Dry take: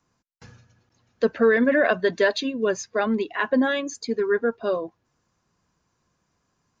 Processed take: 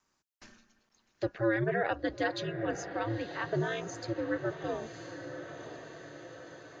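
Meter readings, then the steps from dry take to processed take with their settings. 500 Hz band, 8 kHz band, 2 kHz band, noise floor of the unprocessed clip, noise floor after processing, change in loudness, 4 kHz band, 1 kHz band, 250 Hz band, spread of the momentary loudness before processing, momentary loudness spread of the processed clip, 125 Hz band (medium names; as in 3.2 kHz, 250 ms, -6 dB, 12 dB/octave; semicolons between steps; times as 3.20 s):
-11.5 dB, no reading, -10.5 dB, -74 dBFS, -77 dBFS, -11.5 dB, -10.0 dB, -7.0 dB, -10.5 dB, 9 LU, 17 LU, +5.0 dB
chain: ring modulator 110 Hz; on a send: echo that smears into a reverb 985 ms, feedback 50%, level -10.5 dB; on the sum: tape noise reduction on one side only encoder only; trim -8 dB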